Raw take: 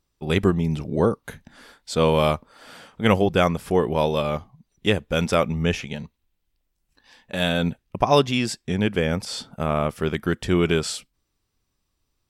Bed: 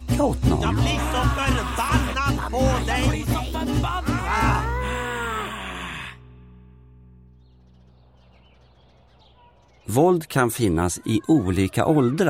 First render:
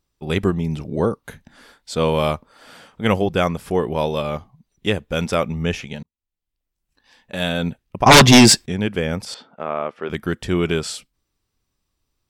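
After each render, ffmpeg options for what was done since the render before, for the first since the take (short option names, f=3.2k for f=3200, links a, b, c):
-filter_complex "[0:a]asettb=1/sr,asplit=3[a][b][c];[a]atrim=end=8.064[d];[b]atrim=start=8.06:end=8.66,asetpts=PTS-STARTPTS,afade=t=in:d=0.004:c=qsin,afade=t=out:st=0.596:d=0.004:c=qsin,aeval=exprs='0.668*sin(PI/2*5.62*val(0)/0.668)':c=same[e];[c]atrim=start=8.656[f];[d][e]acrossfade=d=0.004:c1=hsin:c2=qsin[g];[g][f]acrossfade=d=0.004:c1=qsin:c2=hsin,asettb=1/sr,asplit=3[h][i][j];[h]atrim=end=9.344[k];[i]atrim=start=9.34:end=10.1,asetpts=PTS-STARTPTS,afade=t=in:d=0.004:c=qsin,afade=t=out:st=0.756:d=0.004:c=qsin,highpass=350,lowpass=2.4k[l];[j]atrim=start=10.096[m];[k][l]acrossfade=d=0.004:c1=hsin:c2=qsin[n];[n][m]acrossfade=d=0.004:c1=qsin:c2=hsin,asplit=2[o][p];[o]atrim=end=6.03,asetpts=PTS-STARTPTS,afade=t=out:st=6.026:d=0.004:c=hsin[q];[p]atrim=start=6.03,asetpts=PTS-STARTPTS,afade=t=in:d=1.32[r];[q][r]concat=n=2:v=0:a=1"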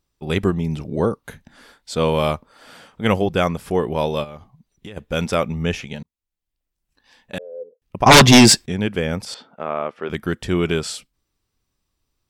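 -filter_complex "[0:a]asplit=3[a][b][c];[a]afade=t=out:st=4.23:d=0.02[d];[b]acompressor=threshold=-32dB:ratio=12:attack=3.2:release=140:knee=1:detection=peak,afade=t=in:st=4.23:d=0.02,afade=t=out:st=4.96:d=0.02[e];[c]afade=t=in:st=4.96:d=0.02[f];[d][e][f]amix=inputs=3:normalize=0,asettb=1/sr,asplit=3[g][h][i];[g]atrim=end=7.384[j];[h]atrim=start=7.38:end=7.82,asetpts=PTS-STARTPTS,afade=t=in:d=0.004:c=qsin,afade=t=out:st=0.436:d=0.004:c=qsin,asuperpass=centerf=480:order=4:qfactor=6.2[k];[i]atrim=start=7.816[l];[j][k]acrossfade=d=0.004:c1=hsin:c2=qsin[m];[m][l]acrossfade=d=0.004:c1=qsin:c2=hsin"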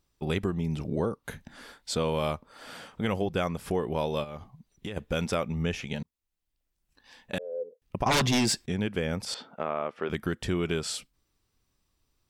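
-af "alimiter=limit=-7.5dB:level=0:latency=1:release=38,acompressor=threshold=-29dB:ratio=2.5"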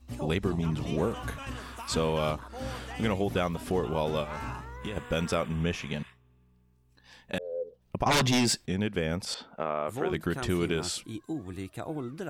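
-filter_complex "[1:a]volume=-17.5dB[a];[0:a][a]amix=inputs=2:normalize=0"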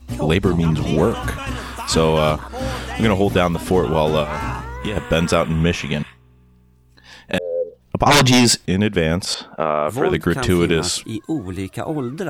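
-af "volume=12dB"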